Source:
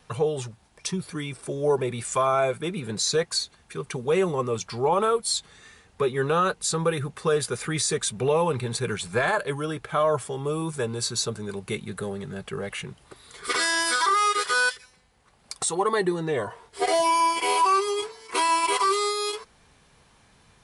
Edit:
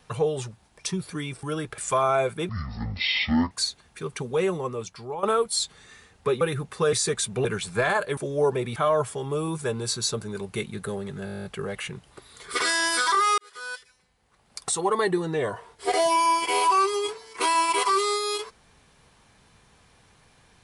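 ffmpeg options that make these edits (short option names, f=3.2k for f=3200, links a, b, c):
-filter_complex "[0:a]asplit=22[a][b][c][d][e][f][g][h][i][j][k][l][m][n][o][p][q][r][s][t][u][v];[a]atrim=end=1.432[w];[b]atrim=start=9.548:end=9.902[x];[c]atrim=start=2.018:end=2.734[y];[d]atrim=start=2.73:end=3.25,asetpts=PTS-STARTPTS,asetrate=22491,aresample=44100[z];[e]atrim=start=3.246:end=4.97,asetpts=PTS-STARTPTS,afade=t=out:st=0.644:d=1.08:silence=0.223872[aa];[f]atrim=start=4.97:end=6.152,asetpts=PTS-STARTPTS,afade=t=in:d=0.004:c=hsin:silence=0.223872[ab];[g]atrim=start=6.858:end=7.382[ac];[h]atrim=start=7.768:end=8.292[ad];[i]atrim=start=8.828:end=9.552[ae];[j]atrim=start=1.428:end=2.022[af];[k]atrim=start=9.898:end=12.412[ag];[l]atrim=start=12.388:end=12.412[ah];[m]atrim=start=12.388:end=12.412[ai];[n]atrim=start=12.388:end=12.412[aj];[o]atrim=start=12.388:end=12.412[ak];[p]atrim=start=12.388:end=12.412[al];[q]atrim=start=12.388:end=12.412[am];[r]atrim=start=12.388:end=12.412[an];[s]atrim=start=12.388:end=12.412[ao];[t]atrim=start=12.388:end=12.412[ap];[u]atrim=start=12.388:end=14.32,asetpts=PTS-STARTPTS,afade=t=out:st=1.928:d=0.004:c=hsin[aq];[v]atrim=start=14.32,asetpts=PTS-STARTPTS,afade=t=in:d=1.39[ar];[w][x]acrossfade=d=0.004:c1=hsin:c2=hsin[as];[as][y]acrossfade=d=0.004:c1=hsin:c2=hsin[at];[at][z]acrossfade=d=0.004:c1=hsin:c2=hsin[au];[aa][ab]concat=n=2:v=0:a=1[av];[au][av]acrossfade=d=0.004:c1=hsin:c2=hsin[aw];[aw][ac]acrossfade=d=0.004:c1=hsin:c2=hsin[ax];[ax][ad]acrossfade=d=0.004:c1=hsin:c2=hsin[ay];[ay][ae]acrossfade=d=0.004:c1=hsin:c2=hsin[az];[az][af]acrossfade=d=0.004:c1=hsin:c2=hsin[ba];[ba][ag]acrossfade=d=0.004:c1=hsin:c2=hsin[bb];[bb][ah]acrossfade=d=0.004:c1=hsin:c2=hsin[bc];[bc][ai]acrossfade=d=0.004:c1=hsin:c2=hsin[bd];[bd][aj]acrossfade=d=0.004:c1=hsin:c2=hsin[be];[be][ak]acrossfade=d=0.004:c1=hsin:c2=hsin[bf];[bf][al]acrossfade=d=0.004:c1=hsin:c2=hsin[bg];[bg][am]acrossfade=d=0.004:c1=hsin:c2=hsin[bh];[bh][an]acrossfade=d=0.004:c1=hsin:c2=hsin[bi];[bi][ao]acrossfade=d=0.004:c1=hsin:c2=hsin[bj];[bj][ap]acrossfade=d=0.004:c1=hsin:c2=hsin[bk];[aq][ar]concat=n=2:v=0:a=1[bl];[bk][bl]acrossfade=d=0.004:c1=hsin:c2=hsin"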